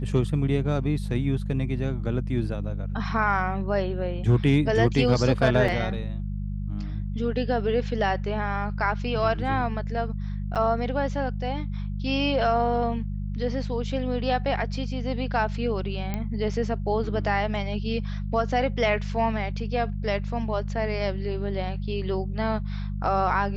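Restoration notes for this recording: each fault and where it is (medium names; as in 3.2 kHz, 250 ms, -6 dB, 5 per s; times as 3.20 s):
hum 50 Hz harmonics 4 -30 dBFS
5.68 s: dropout 3.9 ms
10.55–10.56 s: dropout 7.1 ms
16.14 s: pop -16 dBFS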